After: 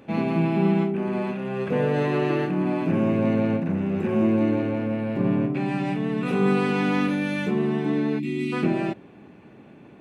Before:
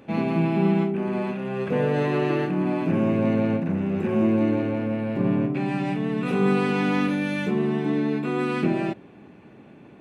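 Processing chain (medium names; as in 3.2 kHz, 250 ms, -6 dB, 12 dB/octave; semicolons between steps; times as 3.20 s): time-frequency box 8.19–8.53 s, 380–1800 Hz -27 dB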